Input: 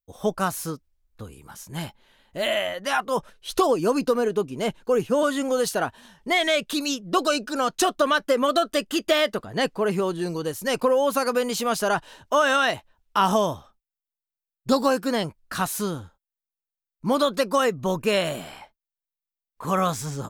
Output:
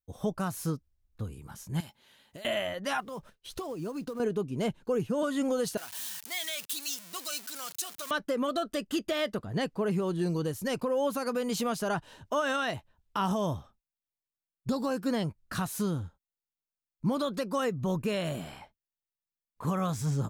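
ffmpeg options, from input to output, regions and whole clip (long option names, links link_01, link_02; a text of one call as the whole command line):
ffmpeg -i in.wav -filter_complex "[0:a]asettb=1/sr,asplit=3[link_01][link_02][link_03];[link_01]atrim=end=1.804[link_04];[link_02]atrim=start=1.8:end=2.45,asetpts=PTS-STARTPTS,afade=type=in:duration=0.004:curve=qsin,afade=type=out:start_time=0.646:duration=0.004:curve=qsin,highpass=frequency=270:poles=1,highshelf=frequency=2600:gain=10,acompressor=threshold=-39dB:ratio=8:attack=3.2:release=140:knee=1:detection=peak[link_05];[link_03]atrim=start=2.446[link_06];[link_04][link_05]acrossfade=duration=0.004:curve1=hsin:curve2=qsin[link_07];[link_07][link_06]acrossfade=duration=0.004:curve1=qsin:curve2=hsin,asettb=1/sr,asplit=3[link_08][link_09][link_10];[link_08]atrim=end=3.004[link_11];[link_09]atrim=start=3:end=4.2,asetpts=PTS-STARTPTS,afade=type=in:duration=0.004:curve=qsin,afade=type=out:start_time=1.196:duration=0.004:curve=qsin,agate=range=-33dB:threshold=-46dB:ratio=3:release=100:detection=peak,acompressor=threshold=-37dB:ratio=2.5:attack=3.2:release=140:knee=1:detection=peak,acrusher=bits=5:mode=log:mix=0:aa=0.000001[link_12];[link_10]atrim=start=4.196[link_13];[link_11][link_12]acrossfade=duration=0.004:curve1=hsin:curve2=qsin[link_14];[link_14][link_13]acrossfade=duration=0.004:curve1=qsin:curve2=hsin,asettb=1/sr,asplit=3[link_15][link_16][link_17];[link_15]atrim=end=5.774[link_18];[link_16]atrim=start=5.77:end=8.11,asetpts=PTS-STARTPTS,afade=type=in:duration=0.004:curve=qsin,afade=type=out:start_time=2.336:duration=0.004:curve=qsin,aeval=exprs='val(0)+0.5*0.0668*sgn(val(0))':channel_layout=same,aderivative[link_19];[link_17]atrim=start=8.106[link_20];[link_18][link_19]acrossfade=duration=0.004:curve1=hsin:curve2=qsin[link_21];[link_21][link_20]acrossfade=duration=0.004:curve1=qsin:curve2=hsin,equalizer=frequency=110:width=0.49:gain=10.5,alimiter=limit=-14.5dB:level=0:latency=1:release=220,volume=-6dB" out.wav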